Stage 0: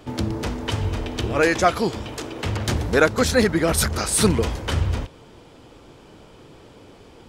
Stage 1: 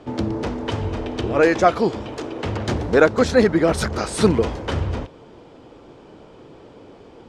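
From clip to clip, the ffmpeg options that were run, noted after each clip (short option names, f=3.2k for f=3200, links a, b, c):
-af "lowpass=7k,equalizer=f=450:w=0.34:g=8.5,volume=-4.5dB"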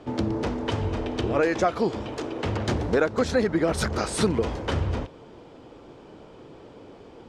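-af "acompressor=threshold=-17dB:ratio=4,volume=-2dB"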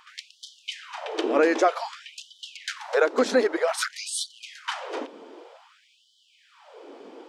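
-af "afftfilt=real='re*gte(b*sr/1024,210*pow(3000/210,0.5+0.5*sin(2*PI*0.53*pts/sr)))':imag='im*gte(b*sr/1024,210*pow(3000/210,0.5+0.5*sin(2*PI*0.53*pts/sr)))':win_size=1024:overlap=0.75,volume=2.5dB"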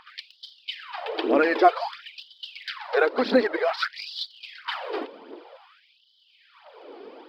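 -af "aresample=11025,aresample=44100,aphaser=in_gain=1:out_gain=1:delay=2.9:decay=0.52:speed=1.5:type=triangular"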